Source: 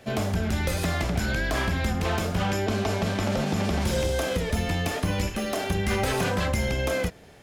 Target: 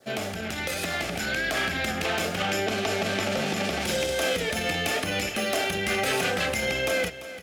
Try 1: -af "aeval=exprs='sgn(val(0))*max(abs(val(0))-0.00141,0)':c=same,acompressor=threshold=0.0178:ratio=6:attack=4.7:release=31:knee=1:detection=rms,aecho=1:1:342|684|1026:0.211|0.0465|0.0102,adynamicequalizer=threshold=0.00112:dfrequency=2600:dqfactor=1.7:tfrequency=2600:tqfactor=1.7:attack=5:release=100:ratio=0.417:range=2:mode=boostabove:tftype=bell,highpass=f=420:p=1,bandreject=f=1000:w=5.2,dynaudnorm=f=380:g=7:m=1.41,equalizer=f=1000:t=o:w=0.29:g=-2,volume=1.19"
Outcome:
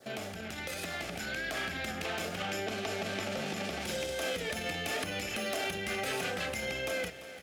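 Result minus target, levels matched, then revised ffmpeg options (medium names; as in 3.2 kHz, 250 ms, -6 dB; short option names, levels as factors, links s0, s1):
compression: peak gain reduction +8.5 dB
-af "aeval=exprs='sgn(val(0))*max(abs(val(0))-0.00141,0)':c=same,acompressor=threshold=0.0596:ratio=6:attack=4.7:release=31:knee=1:detection=rms,aecho=1:1:342|684|1026:0.211|0.0465|0.0102,adynamicequalizer=threshold=0.00112:dfrequency=2600:dqfactor=1.7:tfrequency=2600:tqfactor=1.7:attack=5:release=100:ratio=0.417:range=2:mode=boostabove:tftype=bell,highpass=f=420:p=1,bandreject=f=1000:w=5.2,dynaudnorm=f=380:g=7:m=1.41,equalizer=f=1000:t=o:w=0.29:g=-2,volume=1.19"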